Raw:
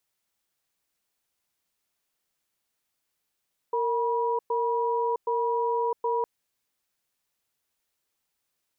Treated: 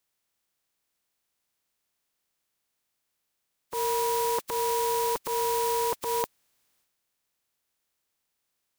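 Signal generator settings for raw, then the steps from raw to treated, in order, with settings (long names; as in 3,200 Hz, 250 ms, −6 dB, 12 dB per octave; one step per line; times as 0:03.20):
tone pair in a cadence 462 Hz, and 967 Hz, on 0.66 s, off 0.11 s, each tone −26 dBFS 2.51 s
compressing power law on the bin magnitudes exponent 0.38
transient designer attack −6 dB, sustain +8 dB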